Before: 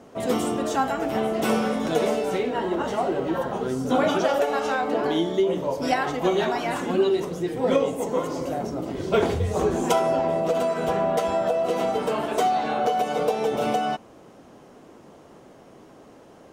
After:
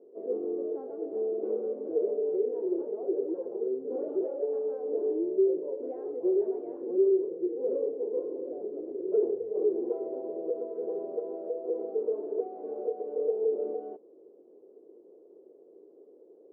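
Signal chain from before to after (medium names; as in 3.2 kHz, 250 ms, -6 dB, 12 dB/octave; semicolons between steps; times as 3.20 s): saturation -16.5 dBFS, distortion -17 dB; Butterworth band-pass 410 Hz, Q 2.9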